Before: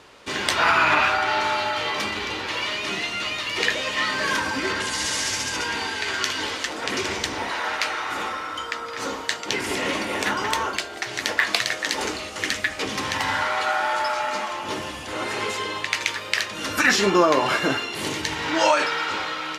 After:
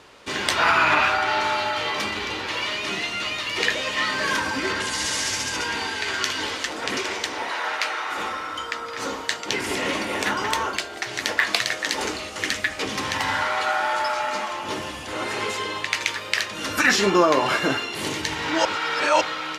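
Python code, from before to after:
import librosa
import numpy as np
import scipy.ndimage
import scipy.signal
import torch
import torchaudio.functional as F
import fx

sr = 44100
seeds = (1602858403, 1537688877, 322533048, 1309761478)

y = fx.bass_treble(x, sr, bass_db=-12, treble_db=-2, at=(6.98, 8.18))
y = fx.edit(y, sr, fx.reverse_span(start_s=18.65, length_s=0.56), tone=tone)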